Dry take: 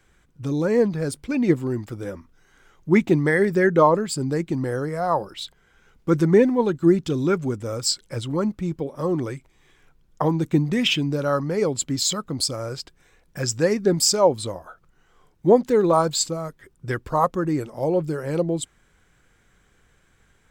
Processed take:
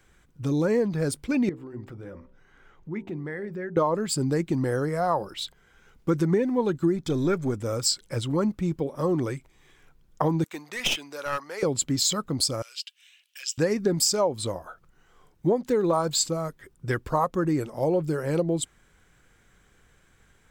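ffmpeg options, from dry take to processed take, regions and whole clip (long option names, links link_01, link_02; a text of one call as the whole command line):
ffmpeg -i in.wav -filter_complex "[0:a]asettb=1/sr,asplit=3[link_01][link_02][link_03];[link_01]atrim=end=1.494[link_04];[link_02]atrim=start=1.49:end=3.77,asetpts=PTS-STARTPTS,afade=type=in:duration=0.004:curve=qsin,afade=type=out:start_time=2.276:duration=0.004:curve=qsin,bass=frequency=250:gain=1,treble=frequency=4000:gain=-14,acompressor=threshold=-43dB:ratio=2:attack=3.2:release=140:knee=1:detection=peak,bandreject=frequency=64.18:width_type=h:width=4,bandreject=frequency=128.36:width_type=h:width=4,bandreject=frequency=192.54:width_type=h:width=4,bandreject=frequency=256.72:width_type=h:width=4,bandreject=frequency=320.9:width_type=h:width=4,bandreject=frequency=385.08:width_type=h:width=4,bandreject=frequency=449.26:width_type=h:width=4,bandreject=frequency=513.44:width_type=h:width=4,bandreject=frequency=577.62:width_type=h:width=4,bandreject=frequency=641.8:width_type=h:width=4,bandreject=frequency=705.98:width_type=h:width=4,bandreject=frequency=770.16:width_type=h:width=4,bandreject=frequency=834.34:width_type=h:width=4,bandreject=frequency=898.52:width_type=h:width=4,bandreject=frequency=962.7:width_type=h:width=4[link_05];[link_03]atrim=start=3.766[link_06];[link_04][link_05]acrossfade=duration=0.004:curve1=hsin:curve2=qsin[link_07];[link_07][link_06]acrossfade=duration=0.004:curve1=qsin:curve2=hsin,asettb=1/sr,asplit=3[link_08][link_09][link_10];[link_08]atrim=end=6.964[link_11];[link_09]atrim=start=6.96:end=7.57,asetpts=PTS-STARTPTS,afade=type=in:duration=0.004:curve=qsin,afade=type=out:start_time=0.606:duration=0.004:curve=qsin,aeval=exprs='if(lt(val(0),0),0.708*val(0),val(0))':channel_layout=same,asuperstop=centerf=2800:order=20:qfactor=7.2[link_12];[link_10]atrim=start=7.566[link_13];[link_11][link_12]acrossfade=duration=0.004:curve1=hsin:curve2=qsin[link_14];[link_14][link_13]acrossfade=duration=0.004:curve1=qsin:curve2=hsin,asettb=1/sr,asplit=3[link_15][link_16][link_17];[link_15]atrim=end=10.444[link_18];[link_16]atrim=start=10.44:end=11.63,asetpts=PTS-STARTPTS,afade=type=in:duration=0.004:curve=qsin,afade=type=out:start_time=1.186:duration=0.004:curve=qsin,highpass=900,aeval=exprs='clip(val(0),-1,0.0398)':channel_layout=same[link_19];[link_17]atrim=start=11.626[link_20];[link_18][link_19]acrossfade=duration=0.004:curve1=hsin:curve2=qsin[link_21];[link_21][link_20]acrossfade=duration=0.004:curve1=qsin:curve2=hsin,asettb=1/sr,asplit=3[link_22][link_23][link_24];[link_22]atrim=end=12.624[link_25];[link_23]atrim=start=12.62:end=13.58,asetpts=PTS-STARTPTS,afade=type=in:duration=0.004:curve=qsin,afade=type=out:start_time=0.956:duration=0.004:curve=qsin,acompressor=threshold=-39dB:ratio=1.5:attack=3.2:release=140:knee=1:detection=peak,highpass=frequency=2900:width_type=q:width=6.3[link_26];[link_24]atrim=start=13.576[link_27];[link_25][link_26]acrossfade=duration=0.004:curve1=hsin:curve2=qsin[link_28];[link_28][link_27]acrossfade=duration=0.004:curve1=qsin:curve2=hsin,highshelf=frequency=12000:gain=3.5,acompressor=threshold=-19dB:ratio=10" out.wav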